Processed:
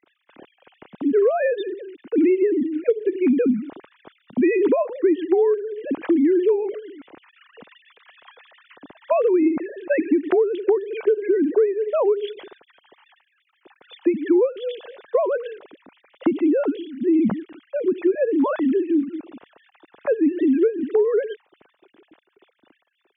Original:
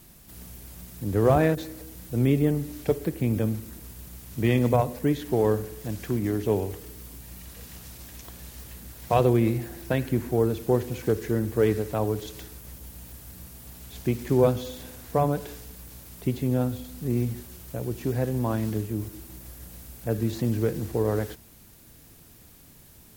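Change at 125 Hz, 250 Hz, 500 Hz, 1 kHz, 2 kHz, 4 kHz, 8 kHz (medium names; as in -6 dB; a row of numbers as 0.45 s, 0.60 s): under -15 dB, +6.5 dB, +7.0 dB, -0.5 dB, +4.0 dB, no reading, under -35 dB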